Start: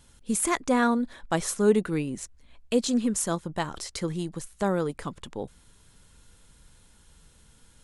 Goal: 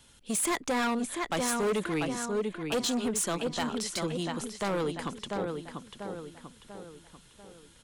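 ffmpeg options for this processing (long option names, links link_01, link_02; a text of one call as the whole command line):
ffmpeg -i in.wav -filter_complex "[0:a]lowshelf=frequency=86:gain=-10,asplit=2[link_01][link_02];[link_02]adelay=692,lowpass=frequency=4600:poles=1,volume=-7dB,asplit=2[link_03][link_04];[link_04]adelay=692,lowpass=frequency=4600:poles=1,volume=0.46,asplit=2[link_05][link_06];[link_06]adelay=692,lowpass=frequency=4600:poles=1,volume=0.46,asplit=2[link_07][link_08];[link_08]adelay=692,lowpass=frequency=4600:poles=1,volume=0.46,asplit=2[link_09][link_10];[link_10]adelay=692,lowpass=frequency=4600:poles=1,volume=0.46[link_11];[link_01][link_03][link_05][link_07][link_09][link_11]amix=inputs=6:normalize=0,acrossover=split=330|620|4900[link_12][link_13][link_14][link_15];[link_12]asoftclip=type=tanh:threshold=-31.5dB[link_16];[link_16][link_13][link_14][link_15]amix=inputs=4:normalize=0,equalizer=frequency=3100:width_type=o:width=0.94:gain=5,volume=25dB,asoftclip=hard,volume=-25dB" out.wav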